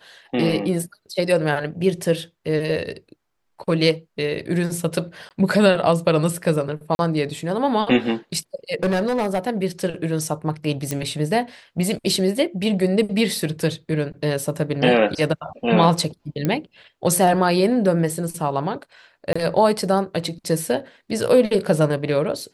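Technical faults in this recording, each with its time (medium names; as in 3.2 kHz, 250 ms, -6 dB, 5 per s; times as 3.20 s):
5.29–5.31 s: dropout 18 ms
6.95–6.99 s: dropout 41 ms
8.83–9.39 s: clipped -16.5 dBFS
10.91 s: pop -9 dBFS
16.45 s: pop -9 dBFS
19.33–19.36 s: dropout 25 ms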